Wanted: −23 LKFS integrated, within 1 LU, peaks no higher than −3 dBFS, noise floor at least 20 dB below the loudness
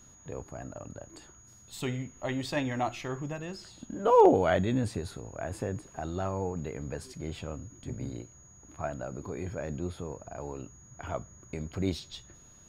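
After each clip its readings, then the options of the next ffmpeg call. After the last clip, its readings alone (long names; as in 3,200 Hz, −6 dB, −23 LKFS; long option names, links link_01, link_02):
interfering tone 6,700 Hz; level of the tone −55 dBFS; integrated loudness −32.0 LKFS; sample peak −9.0 dBFS; target loudness −23.0 LKFS
→ -af "bandreject=frequency=6700:width=30"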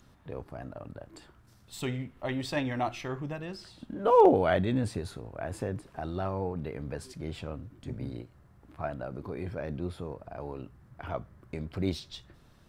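interfering tone none found; integrated loudness −32.0 LKFS; sample peak −9.0 dBFS; target loudness −23.0 LKFS
→ -af "volume=9dB,alimiter=limit=-3dB:level=0:latency=1"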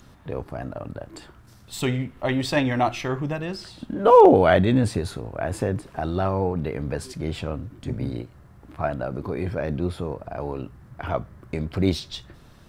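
integrated loudness −23.5 LKFS; sample peak −3.0 dBFS; background noise floor −50 dBFS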